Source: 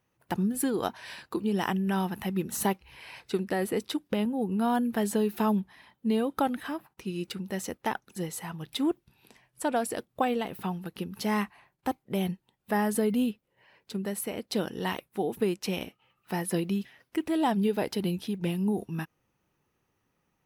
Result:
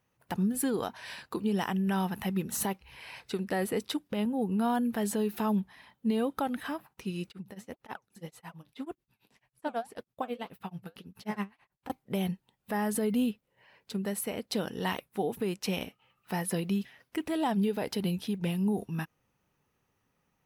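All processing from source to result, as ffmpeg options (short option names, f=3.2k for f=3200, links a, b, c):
-filter_complex "[0:a]asettb=1/sr,asplit=3[a][b][c];[a]atrim=end=7.284[d];[b]atrim=start=7.28:end=11.9,asetpts=PTS-STARTPTS,afade=t=in:d=0.004:c=qsin,afade=t=out:st=4.616:d=0.004:c=qsin,acrossover=split=4100[e][f];[f]acompressor=threshold=-48dB:ratio=4:attack=1:release=60[g];[e][g]amix=inputs=2:normalize=0,tremolo=f=9.2:d=0.99,flanger=delay=0.7:depth=9.6:regen=67:speed=1.8:shape=sinusoidal[h];[c]atrim=start=11.896[i];[d][h]acrossfade=d=0.004:c1=hsin:c2=qsin[j];[j][i]acrossfade=d=0.004:c1=qsin:c2=hsin,equalizer=f=340:t=o:w=0.22:g=-6.5,alimiter=limit=-20.5dB:level=0:latency=1:release=98"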